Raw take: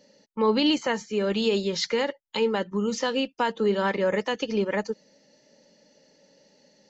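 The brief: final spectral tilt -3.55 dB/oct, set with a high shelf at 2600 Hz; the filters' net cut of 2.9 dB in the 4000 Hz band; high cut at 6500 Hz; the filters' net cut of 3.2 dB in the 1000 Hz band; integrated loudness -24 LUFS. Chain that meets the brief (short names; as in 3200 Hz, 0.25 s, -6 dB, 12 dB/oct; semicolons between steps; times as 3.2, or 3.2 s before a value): LPF 6500 Hz; bell 1000 Hz -4 dB; high shelf 2600 Hz +3.5 dB; bell 4000 Hz -6.5 dB; gain +3 dB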